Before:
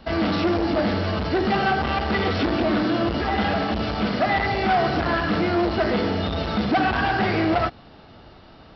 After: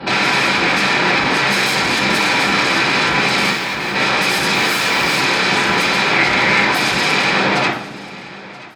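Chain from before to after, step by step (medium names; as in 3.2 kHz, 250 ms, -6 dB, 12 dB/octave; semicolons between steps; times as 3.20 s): fade out at the end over 2.22 s; 4.53–5.15 s: added noise white -38 dBFS; treble shelf 3.6 kHz -10.5 dB; sine folder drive 18 dB, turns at -13.5 dBFS; high-pass 83 Hz; 3.50–3.95 s: overload inside the chain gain 21.5 dB; 6.12–6.64 s: peaking EQ 2.1 kHz +8.5 dB 0.24 oct; feedback delay 979 ms, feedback 31%, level -19.5 dB; reverberation, pre-delay 3 ms, DRR -9 dB; trim -11.5 dB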